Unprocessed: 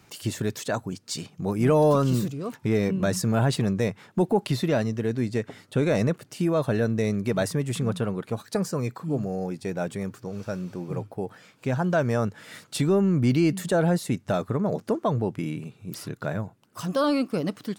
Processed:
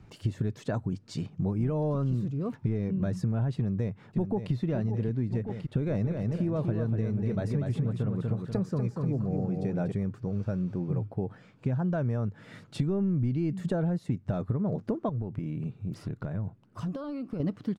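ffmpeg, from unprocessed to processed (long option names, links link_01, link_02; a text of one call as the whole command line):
ffmpeg -i in.wav -filter_complex "[0:a]asplit=2[link_01][link_02];[link_02]afade=type=in:start_time=3.56:duration=0.01,afade=type=out:start_time=4.52:duration=0.01,aecho=0:1:570|1140|1710|2280|2850|3420|3990|4560|5130|5700:0.298538|0.208977|0.146284|0.102399|0.071679|0.0501753|0.0351227|0.0245859|0.0172101|0.0120471[link_03];[link_01][link_03]amix=inputs=2:normalize=0,asettb=1/sr,asplit=3[link_04][link_05][link_06];[link_04]atrim=end=5.804[link_07];[link_05]atrim=start=5.8:end=9.92,asetpts=PTS-STARTPTS,afade=type=in:duration=0.004:curve=qsin,afade=type=out:start_time=4.116:duration=0.004:curve=qsin,aecho=1:1:241|482|723|964:0.531|0.186|0.065|0.0228,atrim=end_sample=181692[link_08];[link_06]atrim=start=9.916[link_09];[link_07][link_08]acrossfade=duration=0.004:curve1=hsin:curve2=qsin[link_10];[link_10][link_09]acrossfade=duration=0.004:curve1=qsin:curve2=hsin,asettb=1/sr,asplit=3[link_11][link_12][link_13];[link_11]atrim=end=15.094[link_14];[link_12]atrim=start=15.09:end=17.4,asetpts=PTS-STARTPTS,afade=type=in:duration=0.004:curve=qsin,afade=type=out:start_time=2.306:duration=0.004:curve=qsin,acompressor=threshold=-32dB:ratio=12:attack=3.2:release=140:knee=1:detection=peak[link_15];[link_13]atrim=start=17.396[link_16];[link_14][link_15]acrossfade=duration=0.004:curve1=hsin:curve2=qsin[link_17];[link_17][link_16]acrossfade=duration=0.004:curve1=qsin:curve2=hsin,aemphasis=mode=reproduction:type=riaa,acompressor=threshold=-21dB:ratio=6,volume=-4.5dB" out.wav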